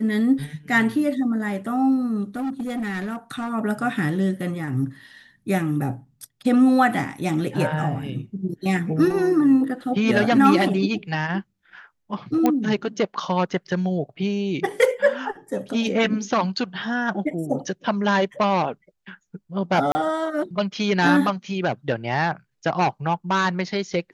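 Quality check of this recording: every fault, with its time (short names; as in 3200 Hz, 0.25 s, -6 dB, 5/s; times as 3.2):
2.36–3.51 clipped -23.5 dBFS
12.46 pop -7 dBFS
19.92–19.95 gap 30 ms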